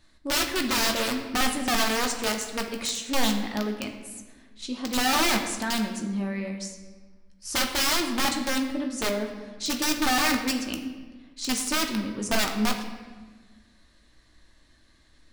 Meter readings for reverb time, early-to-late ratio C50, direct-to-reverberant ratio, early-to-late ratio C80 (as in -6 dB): 1.4 s, 7.0 dB, 2.5 dB, 9.0 dB